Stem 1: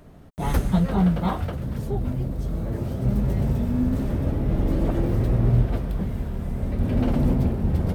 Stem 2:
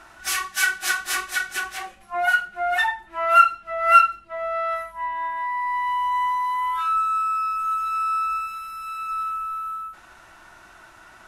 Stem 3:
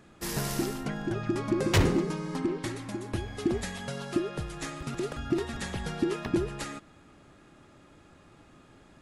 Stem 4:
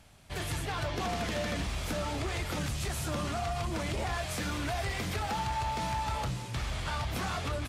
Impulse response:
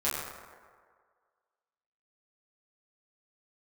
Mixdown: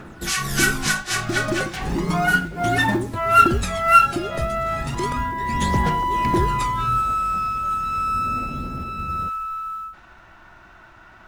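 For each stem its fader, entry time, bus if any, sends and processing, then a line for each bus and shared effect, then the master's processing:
-15.5 dB, 1.35 s, no send, tilt shelf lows +4.5 dB, about 1500 Hz
+0.5 dB, 0.00 s, no send, low-pass opened by the level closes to 2600 Hz, open at -16.5 dBFS; tone controls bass +7 dB, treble +6 dB
-6.0 dB, 0.00 s, no send, phaser 0.34 Hz, delay 1.6 ms, feedback 65%; sine folder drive 10 dB, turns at -8 dBFS; beating tremolo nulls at 1.4 Hz
-12.5 dB, 0.10 s, muted 3.22–5.74, no send, dry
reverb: off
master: short-mantissa float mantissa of 4-bit

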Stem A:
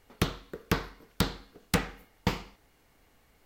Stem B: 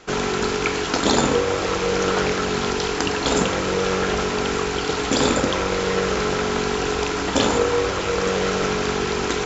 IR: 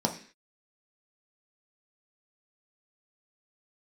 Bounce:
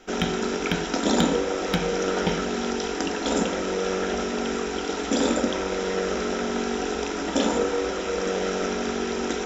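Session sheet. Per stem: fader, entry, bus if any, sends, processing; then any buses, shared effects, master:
+1.5 dB, 0.00 s, send -11.5 dB, resonant high shelf 4900 Hz -12 dB, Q 3; comb 1.3 ms, depth 59%; compressor 2:1, threshold -32 dBFS, peak gain reduction 8 dB
-8.0 dB, 0.00 s, send -13 dB, bell 140 Hz -13.5 dB 0.39 oct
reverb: on, RT60 0.45 s, pre-delay 3 ms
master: notch 840 Hz, Q 12

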